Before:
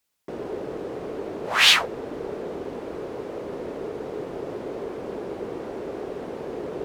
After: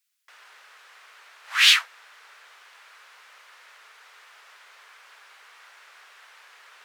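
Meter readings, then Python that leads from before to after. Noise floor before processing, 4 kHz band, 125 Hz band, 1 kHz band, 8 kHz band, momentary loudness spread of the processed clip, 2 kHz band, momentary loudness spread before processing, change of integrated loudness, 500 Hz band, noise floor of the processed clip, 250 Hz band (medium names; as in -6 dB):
-37 dBFS, 0.0 dB, under -40 dB, -8.0 dB, 0.0 dB, 9 LU, -0.5 dB, 16 LU, +9.0 dB, under -30 dB, -53 dBFS, under -40 dB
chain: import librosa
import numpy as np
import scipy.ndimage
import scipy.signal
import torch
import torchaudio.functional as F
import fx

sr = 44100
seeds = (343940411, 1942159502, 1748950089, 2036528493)

y = scipy.signal.sosfilt(scipy.signal.butter(4, 1400.0, 'highpass', fs=sr, output='sos'), x)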